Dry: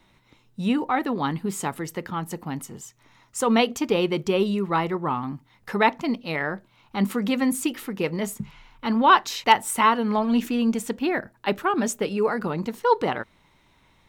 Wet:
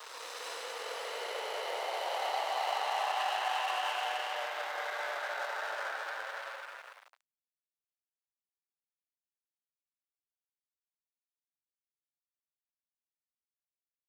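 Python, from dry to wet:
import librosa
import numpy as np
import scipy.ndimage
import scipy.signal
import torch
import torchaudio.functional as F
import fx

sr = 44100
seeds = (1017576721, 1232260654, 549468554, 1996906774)

p1 = fx.paulstretch(x, sr, seeds[0], factor=27.0, window_s=0.1, from_s=12.99)
p2 = fx.peak_eq(p1, sr, hz=1800.0, db=-13.5, octaves=1.7)
p3 = fx.over_compress(p2, sr, threshold_db=-33.0, ratio=-1.0)
p4 = p2 + (p3 * librosa.db_to_amplitude(-2.0))
p5 = np.sign(p4) * np.maximum(np.abs(p4) - 10.0 ** (-37.5 / 20.0), 0.0)
p6 = scipy.signal.sosfilt(scipy.signal.bessel(6, 1100.0, 'highpass', norm='mag', fs=sr, output='sos'), p5)
y = p6 * librosa.db_to_amplitude(2.5)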